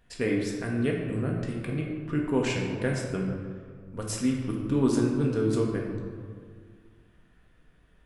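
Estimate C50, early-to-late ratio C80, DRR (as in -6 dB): 2.5 dB, 4.0 dB, -1.5 dB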